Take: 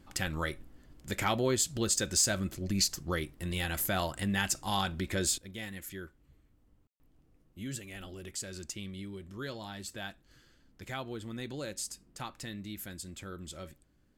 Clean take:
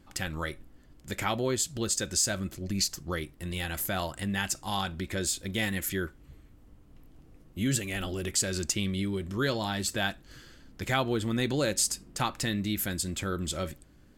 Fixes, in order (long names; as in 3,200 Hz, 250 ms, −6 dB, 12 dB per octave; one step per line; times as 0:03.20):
clipped peaks rebuilt −18 dBFS
ambience match 0:06.87–0:07.00
level 0 dB, from 0:05.38 +11.5 dB